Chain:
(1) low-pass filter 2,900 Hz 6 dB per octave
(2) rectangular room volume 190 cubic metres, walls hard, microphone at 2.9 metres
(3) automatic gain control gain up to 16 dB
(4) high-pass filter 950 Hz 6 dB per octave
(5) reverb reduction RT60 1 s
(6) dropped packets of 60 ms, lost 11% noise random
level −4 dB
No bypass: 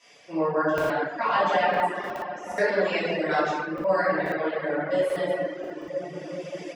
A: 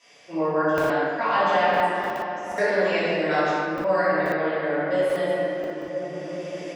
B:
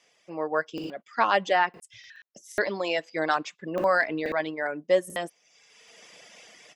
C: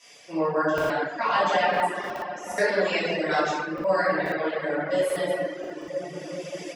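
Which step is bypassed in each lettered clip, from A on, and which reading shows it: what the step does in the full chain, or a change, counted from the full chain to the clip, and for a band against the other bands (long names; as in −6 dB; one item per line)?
5, change in integrated loudness +2.5 LU
2, change in crest factor +5.0 dB
1, 4 kHz band +3.5 dB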